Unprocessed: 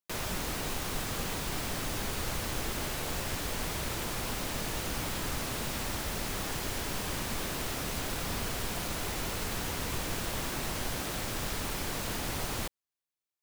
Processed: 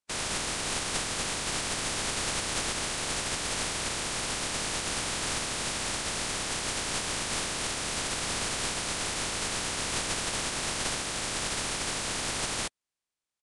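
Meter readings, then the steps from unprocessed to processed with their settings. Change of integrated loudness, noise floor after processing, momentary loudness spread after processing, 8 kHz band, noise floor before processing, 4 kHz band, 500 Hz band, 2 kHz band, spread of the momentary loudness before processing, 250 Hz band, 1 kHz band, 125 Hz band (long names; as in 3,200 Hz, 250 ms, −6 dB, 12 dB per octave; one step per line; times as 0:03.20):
+4.0 dB, below −85 dBFS, 1 LU, +7.5 dB, below −85 dBFS, +6.5 dB, +1.0 dB, +4.5 dB, 0 LU, −1.0 dB, +3.0 dB, −3.0 dB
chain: compressing power law on the bin magnitudes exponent 0.39
downsampling to 22,050 Hz
level +4 dB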